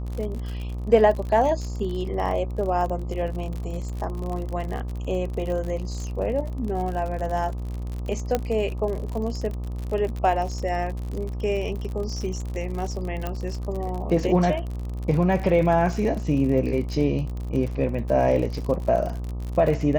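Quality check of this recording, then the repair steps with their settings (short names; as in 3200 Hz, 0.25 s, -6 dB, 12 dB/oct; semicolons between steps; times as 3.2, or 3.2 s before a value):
buzz 60 Hz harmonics 21 -30 dBFS
crackle 53/s -30 dBFS
8.35 pop -9 dBFS
13.27 pop -15 dBFS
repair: de-click; de-hum 60 Hz, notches 21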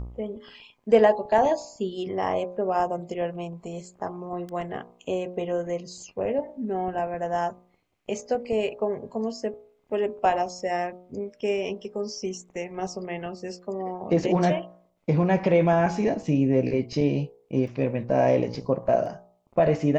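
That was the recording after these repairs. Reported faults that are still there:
13.27 pop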